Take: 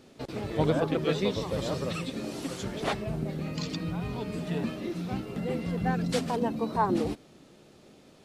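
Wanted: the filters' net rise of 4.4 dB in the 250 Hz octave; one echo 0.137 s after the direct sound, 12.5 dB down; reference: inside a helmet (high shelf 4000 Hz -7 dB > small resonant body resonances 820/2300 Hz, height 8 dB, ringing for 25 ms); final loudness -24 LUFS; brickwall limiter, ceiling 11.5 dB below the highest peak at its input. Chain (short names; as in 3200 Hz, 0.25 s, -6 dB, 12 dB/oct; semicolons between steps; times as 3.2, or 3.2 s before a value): bell 250 Hz +6 dB; limiter -22 dBFS; high shelf 4000 Hz -7 dB; echo 0.137 s -12.5 dB; small resonant body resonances 820/2300 Hz, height 8 dB, ringing for 25 ms; gain +7 dB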